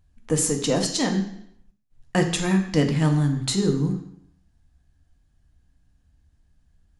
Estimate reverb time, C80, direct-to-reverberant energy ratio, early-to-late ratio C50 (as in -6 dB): 0.75 s, 11.5 dB, 3.5 dB, 9.0 dB